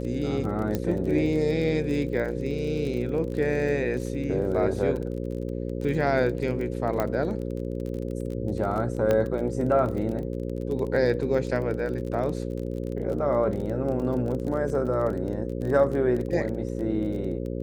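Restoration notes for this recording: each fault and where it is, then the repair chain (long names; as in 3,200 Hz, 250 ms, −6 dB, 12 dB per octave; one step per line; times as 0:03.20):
mains buzz 60 Hz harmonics 9 −31 dBFS
surface crackle 27 per second −32 dBFS
0:00.75: click −14 dBFS
0:07.00: click −13 dBFS
0:09.11: click −12 dBFS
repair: click removal
hum removal 60 Hz, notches 9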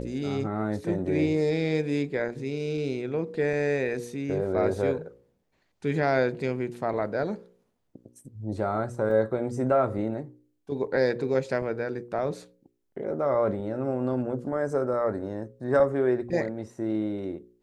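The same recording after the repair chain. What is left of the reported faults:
0:09.11: click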